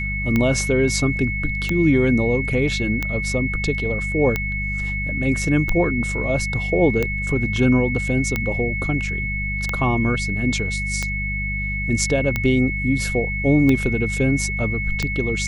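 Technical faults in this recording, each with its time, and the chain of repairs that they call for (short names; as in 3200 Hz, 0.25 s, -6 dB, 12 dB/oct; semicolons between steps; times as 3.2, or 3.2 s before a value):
hum 50 Hz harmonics 4 -27 dBFS
tick 45 rpm -8 dBFS
tone 2200 Hz -25 dBFS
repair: de-click; de-hum 50 Hz, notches 4; notch 2200 Hz, Q 30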